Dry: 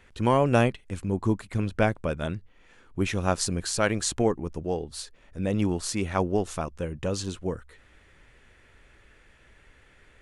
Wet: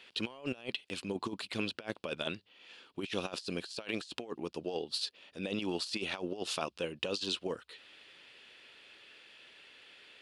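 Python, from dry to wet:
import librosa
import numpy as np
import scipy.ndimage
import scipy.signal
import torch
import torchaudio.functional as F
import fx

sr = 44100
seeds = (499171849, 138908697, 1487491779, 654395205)

y = scipy.signal.sosfilt(scipy.signal.butter(2, 290.0, 'highpass', fs=sr, output='sos'), x)
y = fx.band_shelf(y, sr, hz=3600.0, db=13.0, octaves=1.2)
y = fx.over_compress(y, sr, threshold_db=-30.0, ratio=-0.5)
y = y * librosa.db_to_amplitude(-6.5)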